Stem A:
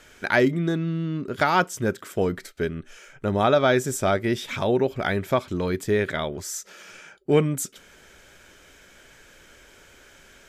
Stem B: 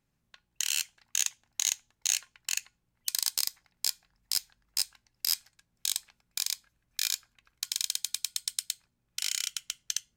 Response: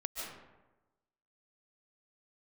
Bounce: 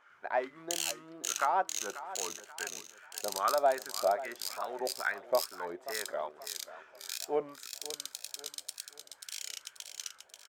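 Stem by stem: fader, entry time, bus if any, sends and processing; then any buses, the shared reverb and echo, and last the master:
-2.0 dB, 0.00 s, no send, echo send -14.5 dB, companded quantiser 6-bit; wah 2.4 Hz 660–1400 Hz, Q 2.9; bell 120 Hz -14 dB 1.4 oct
-1.0 dB, 0.10 s, no send, echo send -16 dB, auto duck -9 dB, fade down 1.95 s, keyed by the first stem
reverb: off
echo: feedback echo 0.536 s, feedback 39%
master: HPF 71 Hz; wow and flutter 85 cents

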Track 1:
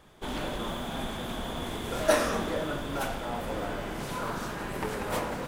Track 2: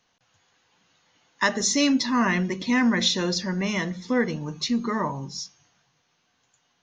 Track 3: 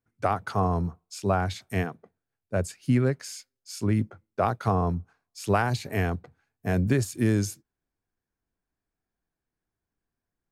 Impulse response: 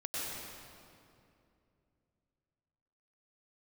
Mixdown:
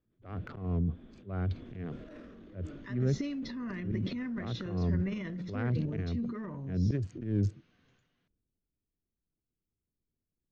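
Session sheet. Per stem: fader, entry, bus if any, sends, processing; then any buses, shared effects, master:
0.84 s -23.5 dB -> 1.49 s -14.5 dB, 0.00 s, no send, bell 280 Hz +6.5 dB 1.1 oct; auto duck -7 dB, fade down 0.95 s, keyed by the third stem
0.0 dB, 1.45 s, no send, compressor 8:1, threshold -32 dBFS, peak gain reduction 15.5 dB
-1.0 dB, 0.00 s, no send, Wiener smoothing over 25 samples; auto swell 0.156 s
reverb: off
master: tape spacing loss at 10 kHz 37 dB; transient shaper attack -6 dB, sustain +9 dB; bell 850 Hz -14.5 dB 1 oct

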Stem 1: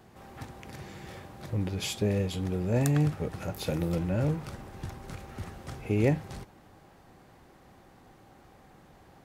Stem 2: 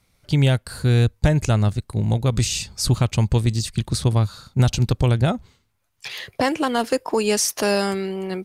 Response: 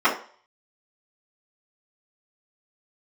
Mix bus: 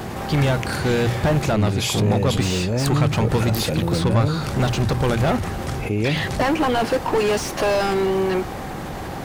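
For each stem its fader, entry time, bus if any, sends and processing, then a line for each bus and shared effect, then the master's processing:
+1.5 dB, 0.00 s, no send, fast leveller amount 70%
-5.5 dB, 0.00 s, no send, notches 60/120 Hz; overdrive pedal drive 30 dB, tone 1300 Hz, clips at -5 dBFS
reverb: off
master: dry

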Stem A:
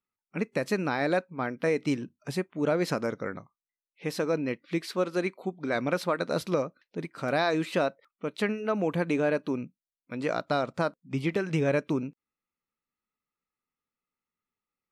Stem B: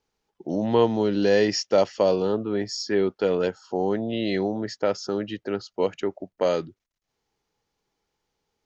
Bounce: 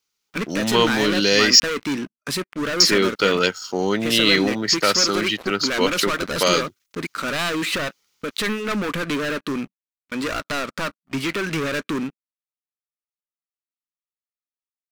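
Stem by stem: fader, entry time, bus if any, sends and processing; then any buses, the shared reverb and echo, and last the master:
-7.5 dB, 0.00 s, no send, HPF 260 Hz 12 dB/oct; sample leveller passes 5
-1.5 dB, 0.00 s, muted 1.6–2.8, no send, tilt +3 dB/oct; notch 1700 Hz, Q 8.4; AGC gain up to 9.5 dB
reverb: off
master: EQ curve 210 Hz 0 dB, 780 Hz -10 dB, 1200 Hz +2 dB; sample leveller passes 1

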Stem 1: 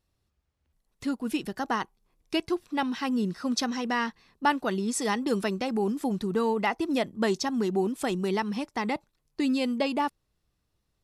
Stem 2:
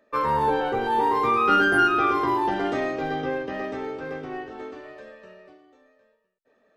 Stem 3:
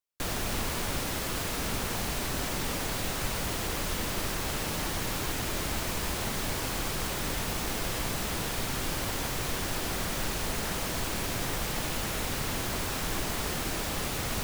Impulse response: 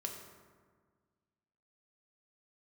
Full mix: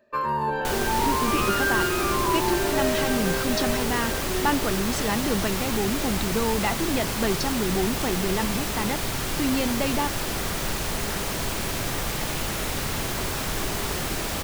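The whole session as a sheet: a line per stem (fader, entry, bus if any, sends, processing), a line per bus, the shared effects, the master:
+0.5 dB, 0.00 s, no send, Chebyshev band-pass 120–4100 Hz; transient shaper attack 0 dB, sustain +8 dB
-4.0 dB, 0.00 s, send -9 dB, ripple EQ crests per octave 1.4, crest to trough 12 dB; compressor 3:1, threshold -21 dBFS, peak gain reduction 6.5 dB
+1.0 dB, 0.45 s, send -5.5 dB, dry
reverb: on, RT60 1.6 s, pre-delay 3 ms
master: dry

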